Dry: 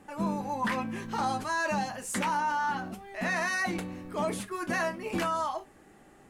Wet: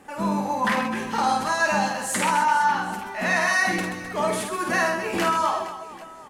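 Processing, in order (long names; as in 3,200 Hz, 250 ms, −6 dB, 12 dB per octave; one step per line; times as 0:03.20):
low-shelf EQ 310 Hz −7.5 dB
on a send: reverse bouncing-ball delay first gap 50 ms, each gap 1.6×, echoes 5
on the sum: level +7 dB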